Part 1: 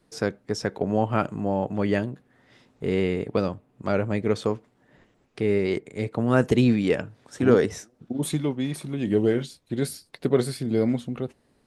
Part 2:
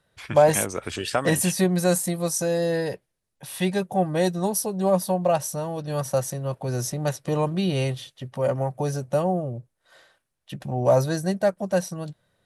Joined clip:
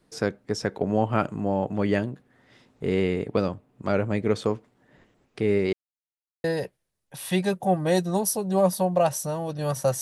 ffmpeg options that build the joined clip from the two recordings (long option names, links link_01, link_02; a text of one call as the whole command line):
ffmpeg -i cue0.wav -i cue1.wav -filter_complex "[0:a]apad=whole_dur=10.01,atrim=end=10.01,asplit=2[link_01][link_02];[link_01]atrim=end=5.73,asetpts=PTS-STARTPTS,afade=type=out:start_time=5.726:duration=0.004:curve=hsin[link_03];[link_02]atrim=start=5.73:end=6.44,asetpts=PTS-STARTPTS,volume=0[link_04];[1:a]atrim=start=2.73:end=6.3,asetpts=PTS-STARTPTS,afade=type=in:duration=0.004:curve=hsin[link_05];[link_03][link_04][link_05]concat=n=3:v=0:a=1" out.wav